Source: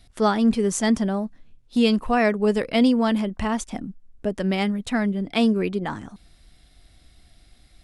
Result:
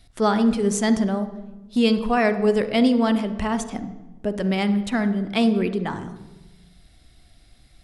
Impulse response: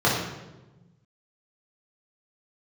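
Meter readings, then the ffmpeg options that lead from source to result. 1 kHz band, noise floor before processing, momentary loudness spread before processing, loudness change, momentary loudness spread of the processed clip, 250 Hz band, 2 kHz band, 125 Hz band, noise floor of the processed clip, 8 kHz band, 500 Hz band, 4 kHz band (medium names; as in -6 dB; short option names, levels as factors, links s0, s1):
+0.5 dB, -56 dBFS, 12 LU, +0.5 dB, 13 LU, +0.5 dB, +0.5 dB, +1.5 dB, -53 dBFS, 0.0 dB, +1.0 dB, 0.0 dB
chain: -filter_complex "[0:a]asplit=2[s0][s1];[1:a]atrim=start_sample=2205,adelay=45[s2];[s1][s2]afir=irnorm=-1:irlink=0,volume=0.0376[s3];[s0][s3]amix=inputs=2:normalize=0"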